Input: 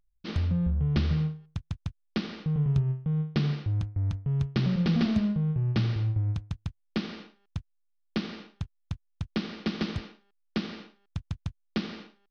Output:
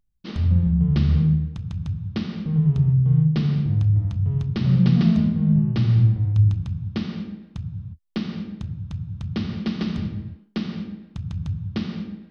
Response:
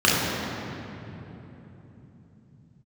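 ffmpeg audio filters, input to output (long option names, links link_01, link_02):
-filter_complex "[0:a]asplit=2[link_01][link_02];[link_02]bass=frequency=250:gain=13,treble=frequency=4000:gain=-2[link_03];[1:a]atrim=start_sample=2205,afade=type=out:start_time=0.42:duration=0.01,atrim=end_sample=18963[link_04];[link_03][link_04]afir=irnorm=-1:irlink=0,volume=-30dB[link_05];[link_01][link_05]amix=inputs=2:normalize=0"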